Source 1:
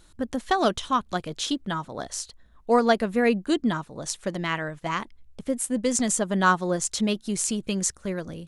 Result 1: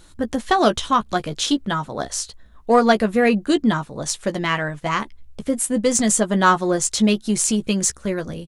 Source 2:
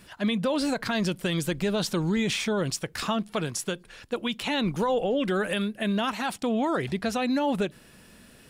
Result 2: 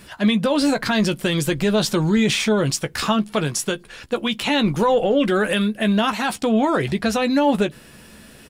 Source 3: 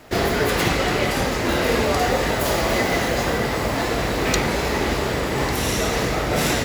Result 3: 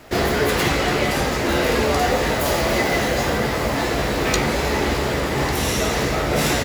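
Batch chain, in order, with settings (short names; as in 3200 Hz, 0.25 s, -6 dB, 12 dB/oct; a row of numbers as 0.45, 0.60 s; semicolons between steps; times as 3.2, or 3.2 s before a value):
in parallel at -9 dB: soft clip -20.5 dBFS; on the sum: doubler 14 ms -9 dB; match loudness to -20 LUFS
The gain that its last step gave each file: +3.5, +4.5, -1.5 dB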